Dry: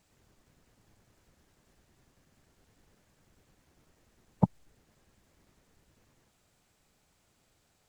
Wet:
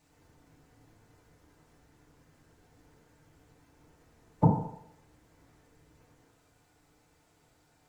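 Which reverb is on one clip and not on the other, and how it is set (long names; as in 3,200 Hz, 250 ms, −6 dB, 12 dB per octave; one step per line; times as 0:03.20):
feedback delay network reverb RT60 0.76 s, low-frequency decay 0.75×, high-frequency decay 0.25×, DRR −5 dB
level −1.5 dB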